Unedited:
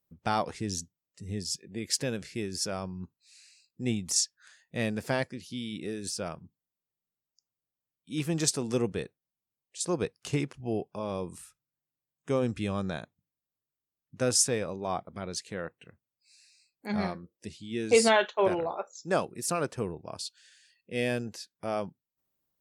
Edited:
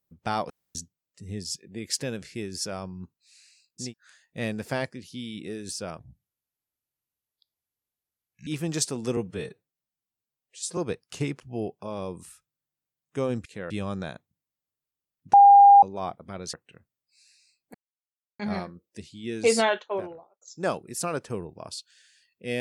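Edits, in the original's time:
0:00.50–0:00.75: fill with room tone
0:03.86–0:04.24: remove, crossfade 0.16 s
0:06.37–0:08.13: play speed 71%
0:08.83–0:09.90: time-stretch 1.5×
0:14.21–0:14.70: beep over 804 Hz −9 dBFS
0:15.41–0:15.66: move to 0:12.58
0:16.87: splice in silence 0.65 s
0:18.07–0:18.89: fade out and dull

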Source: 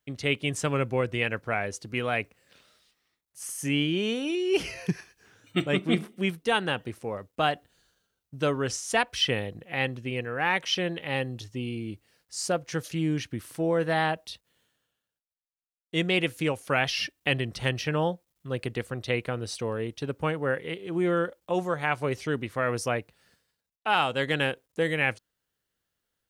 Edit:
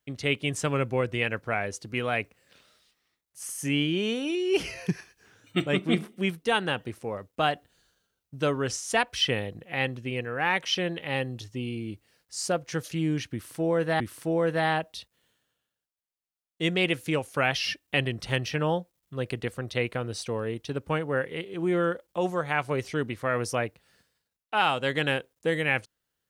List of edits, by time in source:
0:13.33–0:14.00: repeat, 2 plays

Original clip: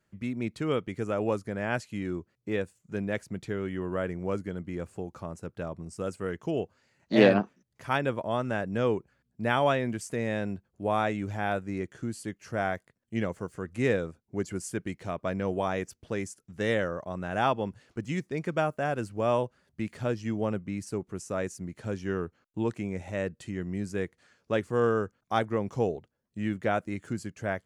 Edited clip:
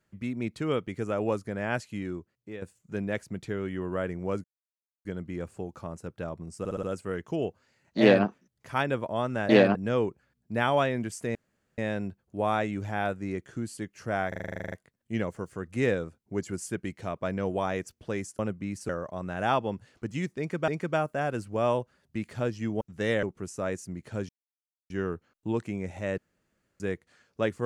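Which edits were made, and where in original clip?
0:01.92–0:02.62: fade out, to −13 dB
0:04.44: splice in silence 0.61 s
0:05.98: stutter 0.06 s, 5 plays
0:07.15–0:07.41: duplicate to 0:08.64
0:10.24: splice in room tone 0.43 s
0:12.74: stutter 0.04 s, 12 plays
0:16.41–0:16.83: swap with 0:20.45–0:20.95
0:18.32–0:18.62: repeat, 2 plays
0:22.01: splice in silence 0.61 s
0:23.29–0:23.91: fill with room tone

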